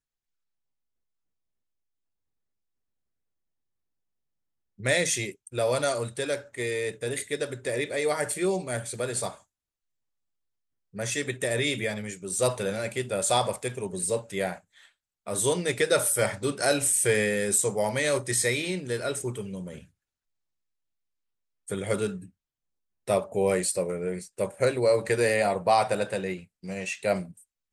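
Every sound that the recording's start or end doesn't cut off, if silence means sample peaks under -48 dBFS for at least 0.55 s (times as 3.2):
4.79–9.4
10.94–19.85
21.68–22.29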